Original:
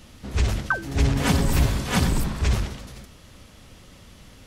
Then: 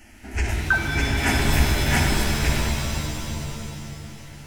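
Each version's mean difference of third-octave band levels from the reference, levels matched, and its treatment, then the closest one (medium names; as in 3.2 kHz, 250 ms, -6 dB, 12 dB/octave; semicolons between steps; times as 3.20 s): 7.5 dB: peaking EQ 2.4 kHz +6.5 dB 2.6 oct; static phaser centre 760 Hz, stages 8; de-hum 125.9 Hz, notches 29; pitch-shifted reverb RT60 2.7 s, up +7 st, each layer -2 dB, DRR 2.5 dB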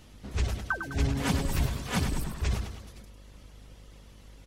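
1.5 dB: reverb removal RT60 0.8 s; vibrato 11 Hz 14 cents; mains buzz 50 Hz, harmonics 20, -47 dBFS -7 dB/octave; on a send: feedback delay 102 ms, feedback 48%, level -8 dB; on the sum: trim -6.5 dB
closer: second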